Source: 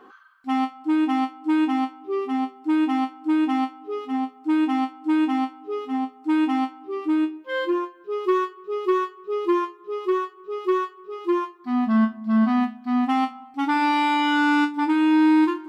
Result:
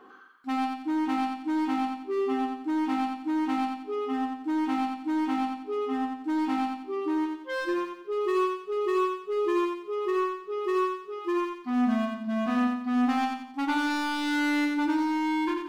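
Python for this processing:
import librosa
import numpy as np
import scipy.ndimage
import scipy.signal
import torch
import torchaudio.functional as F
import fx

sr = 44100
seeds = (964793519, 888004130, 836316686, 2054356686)

y = np.clip(10.0 ** (22.5 / 20.0) * x, -1.0, 1.0) / 10.0 ** (22.5 / 20.0)
y = fx.echo_feedback(y, sr, ms=89, feedback_pct=39, wet_db=-4.5)
y = F.gain(torch.from_numpy(y), -3.0).numpy()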